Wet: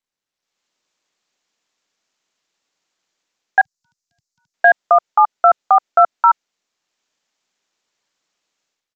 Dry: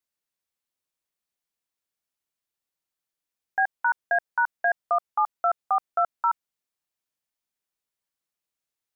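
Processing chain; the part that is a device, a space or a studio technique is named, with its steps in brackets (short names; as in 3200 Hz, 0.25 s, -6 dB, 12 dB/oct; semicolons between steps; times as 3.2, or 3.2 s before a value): 3.61–4.54 inverse Chebyshev band-stop 400–1800 Hz, stop band 60 dB; dynamic EQ 1100 Hz, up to -6 dB, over -39 dBFS, Q 5.6; Bluetooth headset (HPF 200 Hz 12 dB/oct; AGC gain up to 16.5 dB; downsampling 16000 Hz; SBC 64 kbps 32000 Hz)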